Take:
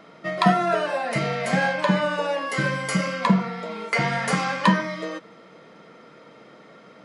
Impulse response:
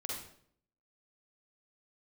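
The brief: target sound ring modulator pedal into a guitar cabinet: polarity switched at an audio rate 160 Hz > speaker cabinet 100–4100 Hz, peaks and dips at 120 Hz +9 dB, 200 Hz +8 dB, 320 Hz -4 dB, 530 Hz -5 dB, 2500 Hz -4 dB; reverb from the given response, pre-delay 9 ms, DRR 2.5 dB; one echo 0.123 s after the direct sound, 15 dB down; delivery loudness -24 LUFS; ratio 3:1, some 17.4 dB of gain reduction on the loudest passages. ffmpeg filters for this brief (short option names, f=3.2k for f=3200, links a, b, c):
-filter_complex "[0:a]acompressor=threshold=-37dB:ratio=3,aecho=1:1:123:0.178,asplit=2[a][b];[1:a]atrim=start_sample=2205,adelay=9[c];[b][c]afir=irnorm=-1:irlink=0,volume=-3.5dB[d];[a][d]amix=inputs=2:normalize=0,aeval=exprs='val(0)*sgn(sin(2*PI*160*n/s))':c=same,highpass=100,equalizer=f=120:t=q:w=4:g=9,equalizer=f=200:t=q:w=4:g=8,equalizer=f=320:t=q:w=4:g=-4,equalizer=f=530:t=q:w=4:g=-5,equalizer=f=2.5k:t=q:w=4:g=-4,lowpass=f=4.1k:w=0.5412,lowpass=f=4.1k:w=1.3066,volume=11.5dB"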